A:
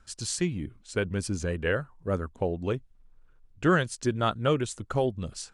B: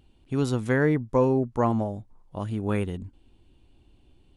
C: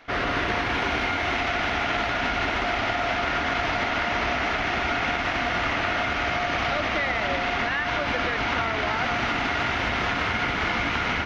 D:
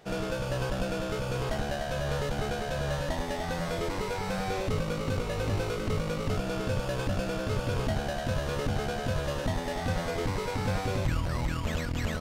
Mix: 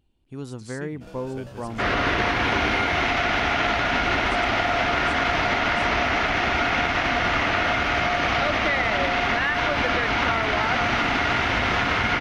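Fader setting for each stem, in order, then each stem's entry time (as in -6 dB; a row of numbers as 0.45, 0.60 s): -13.5, -9.5, +3.0, -12.0 dB; 0.40, 0.00, 1.70, 0.95 s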